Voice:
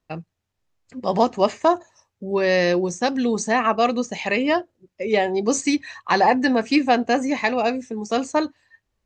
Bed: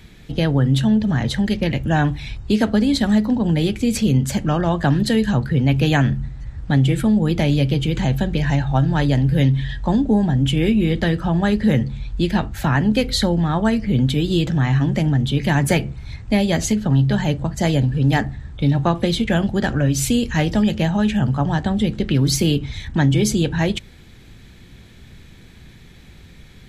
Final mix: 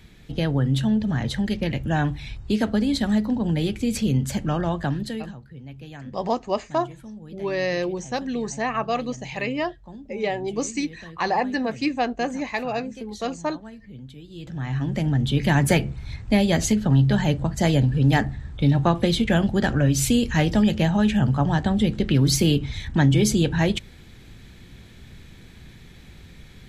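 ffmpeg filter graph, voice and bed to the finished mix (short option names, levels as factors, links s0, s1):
-filter_complex "[0:a]adelay=5100,volume=0.501[s0];[1:a]volume=7.08,afade=t=out:st=4.63:d=0.73:silence=0.11885,afade=t=in:st=14.34:d=1.08:silence=0.0794328[s1];[s0][s1]amix=inputs=2:normalize=0"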